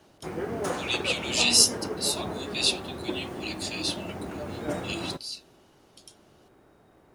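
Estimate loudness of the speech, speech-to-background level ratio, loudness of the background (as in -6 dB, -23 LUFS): -26.0 LUFS, 8.5 dB, -34.5 LUFS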